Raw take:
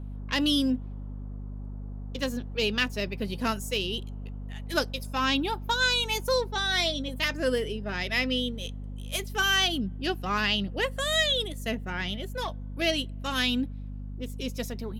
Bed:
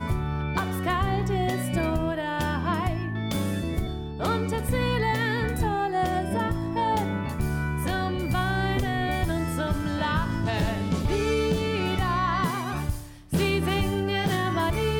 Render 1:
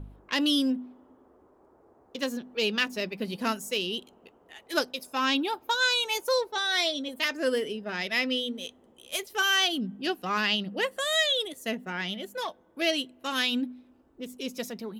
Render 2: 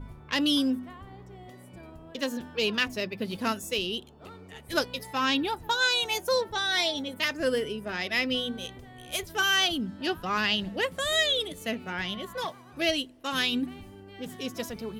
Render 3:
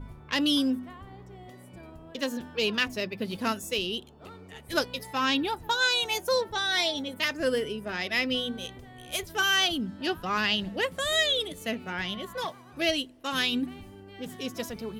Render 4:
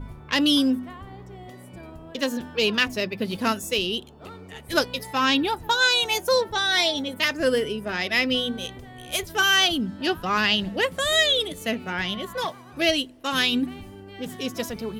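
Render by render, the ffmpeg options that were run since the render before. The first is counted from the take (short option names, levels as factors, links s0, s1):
-af "bandreject=f=50:t=h:w=4,bandreject=f=100:t=h:w=4,bandreject=f=150:t=h:w=4,bandreject=f=200:t=h:w=4,bandreject=f=250:t=h:w=4"
-filter_complex "[1:a]volume=0.0841[s0];[0:a][s0]amix=inputs=2:normalize=0"
-af anull
-af "volume=1.78"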